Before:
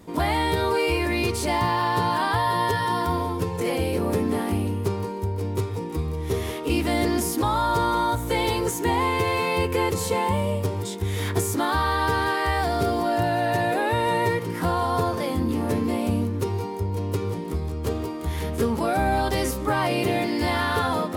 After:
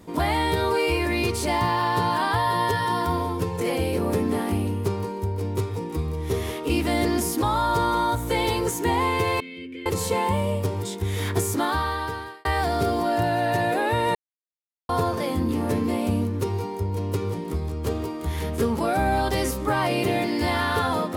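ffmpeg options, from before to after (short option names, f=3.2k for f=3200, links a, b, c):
-filter_complex "[0:a]asettb=1/sr,asplit=3[a][b][c];[a]atrim=end=9.404[d];[b]atrim=start=9.4:end=9.86,asetpts=PTS-STARTPTS,afade=t=in:d=0.004:c=qsin,afade=t=out:st=0.456:d=0.004:c=qsin,asplit=3[e][f][g];[e]bandpass=f=270:t=q:w=8,volume=0dB[h];[f]bandpass=f=2.29k:t=q:w=8,volume=-6dB[i];[g]bandpass=f=3.01k:t=q:w=8,volume=-9dB[j];[h][i][j]amix=inputs=3:normalize=0[k];[c]atrim=start=9.856[l];[d][k]acrossfade=d=0.004:c1=hsin:c2=qsin[m];[m][l]acrossfade=d=0.004:c1=qsin:c2=hsin,asplit=4[n][o][p][q];[n]atrim=end=12.45,asetpts=PTS-STARTPTS,afade=t=out:st=11.63:d=0.82[r];[o]atrim=start=12.45:end=14.15,asetpts=PTS-STARTPTS,afade=t=in:d=0.004:c=hsin,afade=t=out:st=1.696:d=0.004:c=hsin[s];[p]atrim=start=14.15:end=14.89,asetpts=PTS-STARTPTS,volume=0[t];[q]atrim=start=14.89,asetpts=PTS-STARTPTS,afade=t=in:d=0.004:c=hsin[u];[r][s][t][u]concat=n=4:v=0:a=1"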